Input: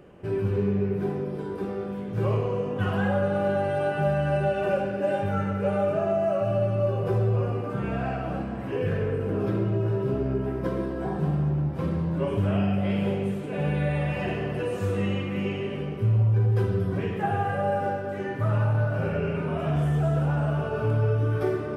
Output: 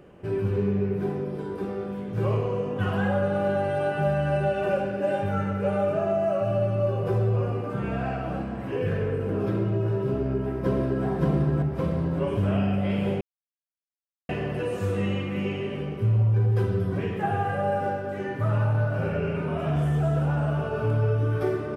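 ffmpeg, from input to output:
-filter_complex "[0:a]asplit=2[a][b];[b]afade=t=in:st=10.09:d=0.01,afade=t=out:st=11.05:d=0.01,aecho=0:1:570|1140|1710|2280|2850|3420|3990|4560:0.891251|0.490188|0.269603|0.148282|0.081555|0.0448553|0.0246704|0.0135687[c];[a][c]amix=inputs=2:normalize=0,asplit=3[d][e][f];[d]atrim=end=13.21,asetpts=PTS-STARTPTS,afade=t=out:st=13.206:d=0.004:c=hsin[g];[e]atrim=start=13.21:end=14.29,asetpts=PTS-STARTPTS,volume=0[h];[f]atrim=start=14.29,asetpts=PTS-STARTPTS,afade=t=in:d=0.004:c=hsin[i];[g][h][i]concat=n=3:v=0:a=1"

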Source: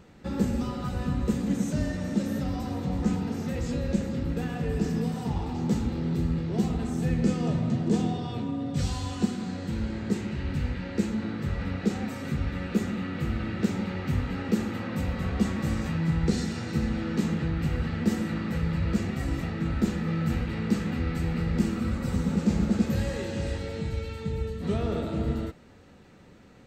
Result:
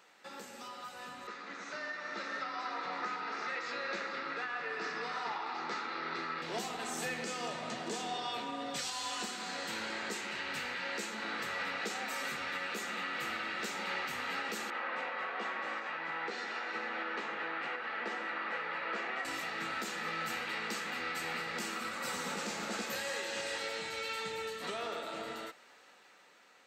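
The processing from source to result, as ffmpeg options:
-filter_complex "[0:a]asettb=1/sr,asplit=3[a][b][c];[a]atrim=end=1.274[d];[b]atrim=start=1.27:end=6.42,asetpts=PTS-STARTPTS,afade=t=in:d=0.004:c=qsin,afade=t=out:st=5.146:d=0.004:c=qsin,highpass=230,equalizer=f=230:t=q:w=4:g=-7,equalizer=f=520:t=q:w=4:g=-5,equalizer=f=790:t=q:w=4:g=-4,equalizer=f=1.3k:t=q:w=4:g=8,equalizer=f=2k:t=q:w=4:g=3,equalizer=f=3.1k:t=q:w=4:g=-8,lowpass=f=4.5k:w=0.5412,lowpass=f=4.5k:w=1.3066[e];[c]atrim=start=6.416[f];[d][e]acrossfade=d=0.004:c1=hsin:c2=qsin[g];[g][f]acrossfade=d=0.004:c1=qsin:c2=hsin,asettb=1/sr,asplit=3[h][i][j];[h]atrim=end=14.704[k];[i]atrim=start=14.7:end=19.25,asetpts=PTS-STARTPTS,afade=t=in:d=0.004:c=qsin,afade=t=out:st=4.546:d=0.004:c=qsin,highpass=330,lowpass=2.2k[l];[j]atrim=start=19.246[m];[k][l]acrossfade=d=0.004:c1=hsin:c2=qsin[n];[n][m]acrossfade=d=0.004:c1=qsin:c2=hsin,highpass=910,alimiter=level_in=12.5dB:limit=-24dB:level=0:latency=1:release=484,volume=-12.5dB,dynaudnorm=f=340:g=11:m=9dB"

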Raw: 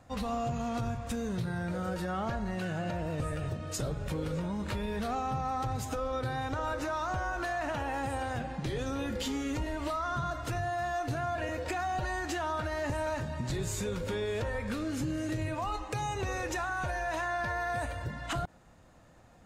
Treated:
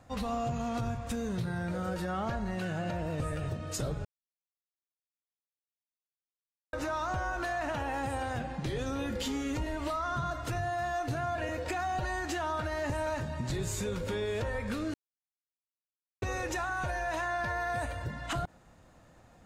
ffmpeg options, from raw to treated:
-filter_complex "[0:a]asplit=5[a][b][c][d][e];[a]atrim=end=4.05,asetpts=PTS-STARTPTS,afade=t=out:st=4.046:d=0.004:c=hsin[f];[b]atrim=start=4.05:end=6.73,asetpts=PTS-STARTPTS,volume=0[g];[c]atrim=start=6.73:end=14.94,asetpts=PTS-STARTPTS,afade=t=in:d=0.004:c=hsin,afade=t=out:st=8.206:d=0.004:c=hsin[h];[d]atrim=start=14.94:end=16.22,asetpts=PTS-STARTPTS,volume=0[i];[e]atrim=start=16.22,asetpts=PTS-STARTPTS,afade=t=in:d=0.004:c=hsin[j];[f][g][h][i][j]concat=n=5:v=0:a=1"

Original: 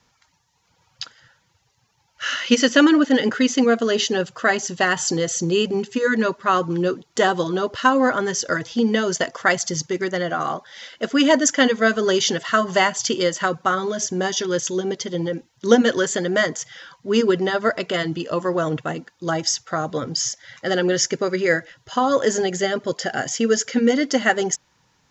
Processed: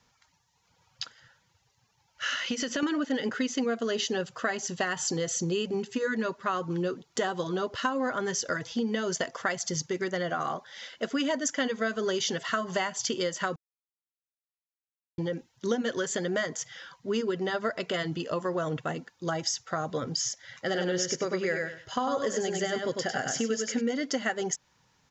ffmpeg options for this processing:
-filter_complex "[0:a]asettb=1/sr,asplit=3[a][b][c];[a]atrim=end=2.354[d];[b]atrim=start=2.35:end=2.83,asetpts=PTS-STARTPTS,afade=t=in:d=0.004:c=qsin,afade=t=out:st=0.476:d=0.004:c=qsin,acompressor=threshold=-20dB:ratio=6:attack=3.2:release=140:knee=1:detection=peak[e];[c]atrim=start=2.826[f];[d][e]acrossfade=d=0.004:c1=hsin:c2=qsin[g];[g][f]acrossfade=d=0.004:c1=qsin:c2=hsin,asplit=3[h][i][j];[h]afade=t=out:st=20.67:d=0.02[k];[i]aecho=1:1:99|198|297:0.596|0.101|0.0172,afade=t=in:st=20.67:d=0.02,afade=t=out:st=23.8:d=0.02[l];[j]afade=t=in:st=23.8:d=0.02[m];[k][l][m]amix=inputs=3:normalize=0,asplit=3[n][o][p];[n]atrim=end=13.56,asetpts=PTS-STARTPTS,afade=t=out:st=13.556:d=0.004:c=hsin[q];[o]atrim=start=13.56:end=15.18,asetpts=PTS-STARTPTS,volume=0[r];[p]atrim=start=15.18,asetpts=PTS-STARTPTS,afade=t=in:d=0.004:c=hsin[s];[q][r][s]concat=n=3:v=0:a=1,equalizer=f=320:t=o:w=0.2:g=-4,acompressor=threshold=-22dB:ratio=4,volume=-4.5dB"

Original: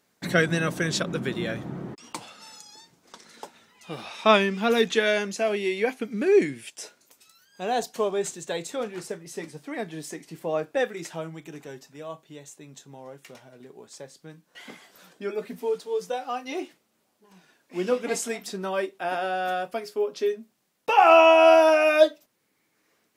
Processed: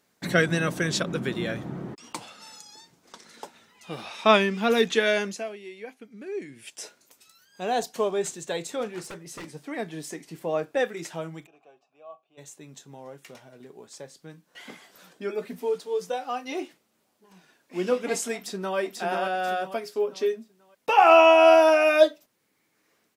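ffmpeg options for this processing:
-filter_complex "[0:a]asettb=1/sr,asplit=3[a][b][c];[a]atrim=end=9.044[d];[b]atrim=start=9.04:end=9.54,asetpts=PTS-STARTPTS,afade=t=in:d=0.004:c=qsin,afade=t=out:st=0.496:d=0.004:c=qsin,aeval=exprs='0.0224*(abs(mod(val(0)/0.0224+3,4)-2)-1)':c=same[e];[c]atrim=start=9.536[f];[d][e]acrossfade=d=0.004:c1=hsin:c2=qsin[g];[g][f]acrossfade=d=0.004:c1=qsin:c2=hsin,asplit=3[h][i][j];[h]afade=t=out:st=11.45:d=0.02[k];[i]asplit=3[l][m][n];[l]bandpass=f=730:t=q:w=8,volume=0dB[o];[m]bandpass=f=1.09k:t=q:w=8,volume=-6dB[p];[n]bandpass=f=2.44k:t=q:w=8,volume=-9dB[q];[o][p][q]amix=inputs=3:normalize=0,afade=t=in:st=11.45:d=0.02,afade=t=out:st=12.37:d=0.02[r];[j]afade=t=in:st=12.37:d=0.02[s];[k][r][s]amix=inputs=3:normalize=0,asplit=2[t][u];[u]afade=t=in:st=18.36:d=0.01,afade=t=out:st=18.78:d=0.01,aecho=0:1:490|980|1470|1960|2450:0.707946|0.247781|0.0867234|0.0303532|0.0106236[v];[t][v]amix=inputs=2:normalize=0,asplit=3[w][x][y];[w]atrim=end=5.6,asetpts=PTS-STARTPTS,afade=t=out:st=5.28:d=0.32:c=qua:silence=0.177828[z];[x]atrim=start=5.6:end=6.4,asetpts=PTS-STARTPTS,volume=-15dB[aa];[y]atrim=start=6.4,asetpts=PTS-STARTPTS,afade=t=in:d=0.32:c=qua:silence=0.177828[ab];[z][aa][ab]concat=n=3:v=0:a=1"

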